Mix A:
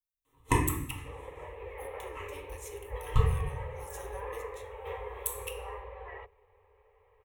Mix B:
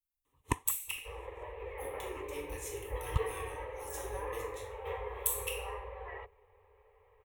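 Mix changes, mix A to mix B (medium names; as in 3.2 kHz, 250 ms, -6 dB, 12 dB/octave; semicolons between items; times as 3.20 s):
speech: send +10.5 dB; first sound: send off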